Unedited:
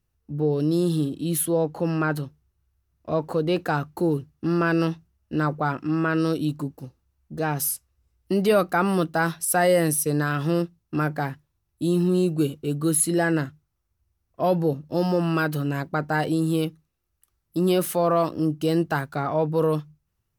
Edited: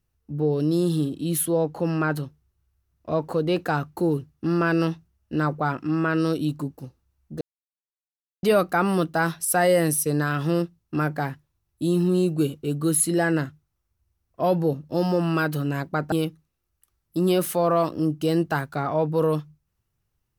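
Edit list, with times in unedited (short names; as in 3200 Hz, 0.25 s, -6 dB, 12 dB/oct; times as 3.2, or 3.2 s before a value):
7.41–8.43 mute
16.12–16.52 cut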